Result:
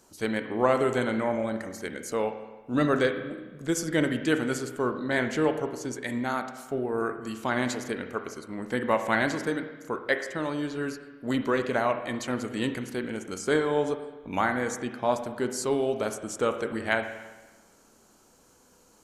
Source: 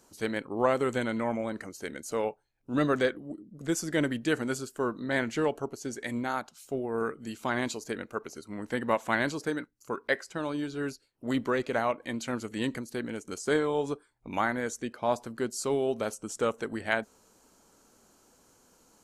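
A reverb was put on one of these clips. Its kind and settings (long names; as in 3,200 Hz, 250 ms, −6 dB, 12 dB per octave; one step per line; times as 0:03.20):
spring reverb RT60 1.2 s, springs 32/54 ms, chirp 75 ms, DRR 7 dB
level +2 dB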